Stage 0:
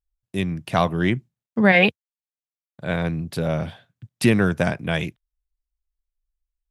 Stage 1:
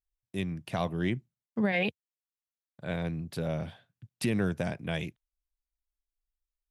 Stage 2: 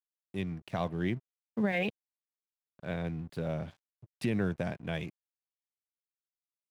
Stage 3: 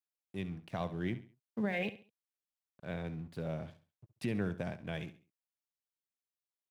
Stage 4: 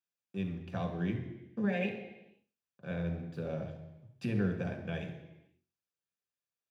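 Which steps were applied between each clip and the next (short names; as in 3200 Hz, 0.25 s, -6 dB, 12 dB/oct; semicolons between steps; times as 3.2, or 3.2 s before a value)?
dynamic EQ 1300 Hz, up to -5 dB, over -34 dBFS, Q 1.4; limiter -10 dBFS, peak gain reduction 6.5 dB; gain -8.5 dB
high shelf 5000 Hz -10 dB; crossover distortion -52.5 dBFS; gain -1.5 dB
feedback echo 68 ms, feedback 32%, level -14 dB; gain -4.5 dB
reverb RT60 1.0 s, pre-delay 3 ms, DRR 3 dB; gain -8 dB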